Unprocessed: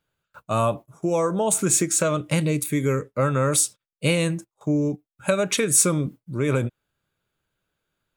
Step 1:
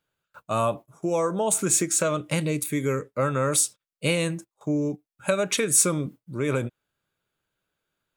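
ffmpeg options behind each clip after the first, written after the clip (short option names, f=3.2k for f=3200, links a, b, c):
-af "lowshelf=f=150:g=-6.5,volume=-1.5dB"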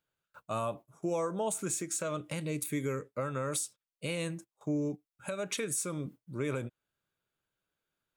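-af "alimiter=limit=-16.5dB:level=0:latency=1:release=321,volume=-6.5dB"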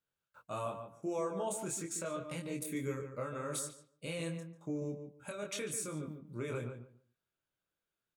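-filter_complex "[0:a]flanger=delay=22.5:depth=3.5:speed=0.41,asplit=2[a][b];[b]adelay=144,lowpass=f=1.9k:p=1,volume=-7dB,asplit=2[c][d];[d]adelay=144,lowpass=f=1.9k:p=1,volume=0.2,asplit=2[e][f];[f]adelay=144,lowpass=f=1.9k:p=1,volume=0.2[g];[c][e][g]amix=inputs=3:normalize=0[h];[a][h]amix=inputs=2:normalize=0,volume=-2dB"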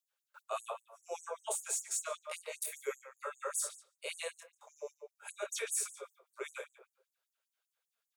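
-af "afftfilt=real='re*gte(b*sr/1024,380*pow(6500/380,0.5+0.5*sin(2*PI*5.1*pts/sr)))':imag='im*gte(b*sr/1024,380*pow(6500/380,0.5+0.5*sin(2*PI*5.1*pts/sr)))':win_size=1024:overlap=0.75,volume=4.5dB"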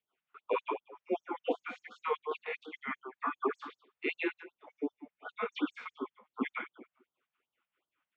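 -af "highpass=f=230:t=q:w=0.5412,highpass=f=230:t=q:w=1.307,lowpass=f=3k:t=q:w=0.5176,lowpass=f=3k:t=q:w=0.7071,lowpass=f=3k:t=q:w=1.932,afreqshift=-150,afftfilt=real='re*(1-between(b*sr/1024,300*pow(2200/300,0.5+0.5*sin(2*PI*2.7*pts/sr))/1.41,300*pow(2200/300,0.5+0.5*sin(2*PI*2.7*pts/sr))*1.41))':imag='im*(1-between(b*sr/1024,300*pow(2200/300,0.5+0.5*sin(2*PI*2.7*pts/sr))/1.41,300*pow(2200/300,0.5+0.5*sin(2*PI*2.7*pts/sr))*1.41))':win_size=1024:overlap=0.75,volume=9dB"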